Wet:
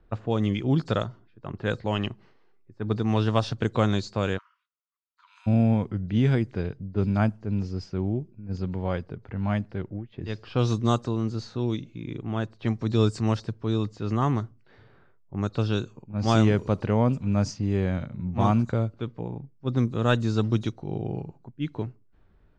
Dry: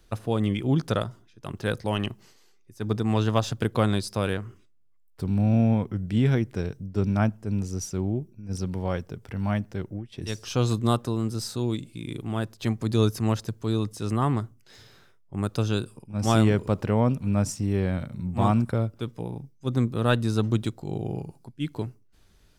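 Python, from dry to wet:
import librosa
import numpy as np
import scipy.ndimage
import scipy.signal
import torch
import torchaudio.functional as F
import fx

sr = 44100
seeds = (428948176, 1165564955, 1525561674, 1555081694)

y = fx.freq_compress(x, sr, knee_hz=3700.0, ratio=1.5)
y = fx.env_lowpass(y, sr, base_hz=1400.0, full_db=-17.0)
y = fx.cheby_ripple_highpass(y, sr, hz=940.0, ripple_db=6, at=(4.37, 5.46), fade=0.02)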